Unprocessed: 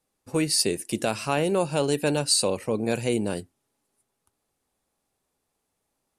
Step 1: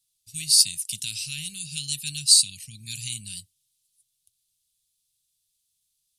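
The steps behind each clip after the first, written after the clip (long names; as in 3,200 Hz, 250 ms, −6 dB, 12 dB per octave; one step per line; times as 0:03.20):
elliptic band-stop filter 140–3,400 Hz, stop band 70 dB
tilt shelving filter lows −7.5 dB, about 650 Hz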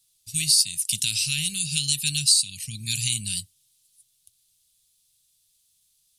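downward compressor 3 to 1, threshold −28 dBFS, peak gain reduction 13 dB
level +8.5 dB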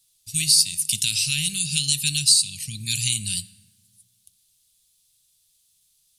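dense smooth reverb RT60 1.7 s, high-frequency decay 0.5×, DRR 16 dB
level +2 dB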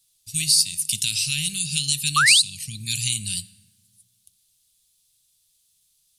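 sound drawn into the spectrogram rise, 0:02.16–0:02.42, 1,100–4,400 Hz −16 dBFS
level −1 dB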